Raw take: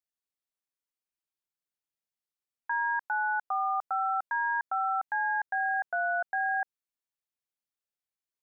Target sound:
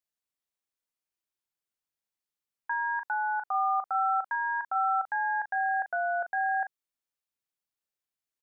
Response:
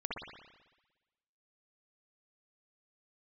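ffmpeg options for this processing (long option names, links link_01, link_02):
-filter_complex "[0:a]asplit=2[link_01][link_02];[link_02]adelay=39,volume=-9dB[link_03];[link_01][link_03]amix=inputs=2:normalize=0"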